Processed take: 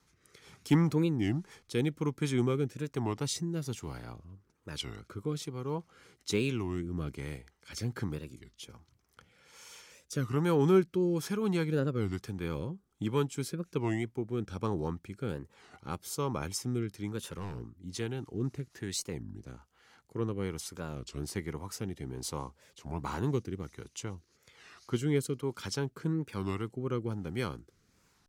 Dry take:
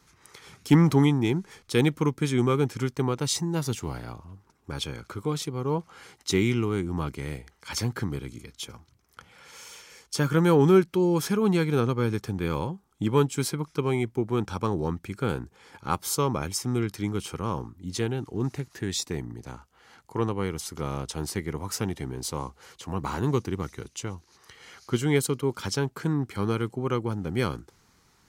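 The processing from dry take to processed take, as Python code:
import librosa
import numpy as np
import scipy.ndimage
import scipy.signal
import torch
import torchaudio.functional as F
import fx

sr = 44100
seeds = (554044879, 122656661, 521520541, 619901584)

y = fx.overload_stage(x, sr, gain_db=27.0, at=(17.28, 17.8))
y = fx.rotary(y, sr, hz=1.2)
y = fx.record_warp(y, sr, rpm=33.33, depth_cents=250.0)
y = y * 10.0 ** (-5.0 / 20.0)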